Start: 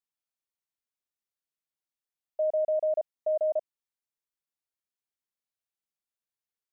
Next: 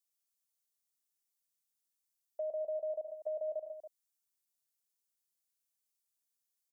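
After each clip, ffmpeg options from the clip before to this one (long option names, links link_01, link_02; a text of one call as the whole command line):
ffmpeg -i in.wav -filter_complex "[0:a]bass=frequency=250:gain=0,treble=frequency=4000:gain=15,aecho=1:1:107|124|140|280:0.335|0.2|0.1|0.178,acrossover=split=320|730[link_01][link_02][link_03];[link_01]acompressor=threshold=-55dB:ratio=4[link_04];[link_02]acompressor=threshold=-30dB:ratio=4[link_05];[link_03]acompressor=threshold=-47dB:ratio=4[link_06];[link_04][link_05][link_06]amix=inputs=3:normalize=0,volume=-6.5dB" out.wav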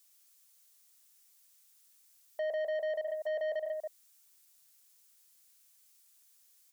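ffmpeg -i in.wav -filter_complex "[0:a]tiltshelf=frequency=720:gain=-7.5,asplit=2[link_01][link_02];[link_02]alimiter=level_in=14.5dB:limit=-24dB:level=0:latency=1,volume=-14.5dB,volume=0dB[link_03];[link_01][link_03]amix=inputs=2:normalize=0,asoftclip=type=tanh:threshold=-37.5dB,volume=6.5dB" out.wav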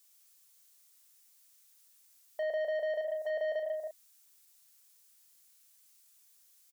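ffmpeg -i in.wav -filter_complex "[0:a]asplit=2[link_01][link_02];[link_02]adelay=35,volume=-6.5dB[link_03];[link_01][link_03]amix=inputs=2:normalize=0" out.wav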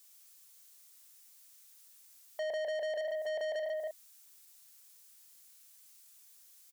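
ffmpeg -i in.wav -af "asoftclip=type=tanh:threshold=-38dB,volume=4.5dB" out.wav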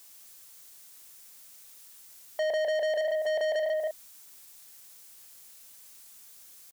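ffmpeg -i in.wav -af "acrusher=bits=10:mix=0:aa=0.000001,volume=7.5dB" out.wav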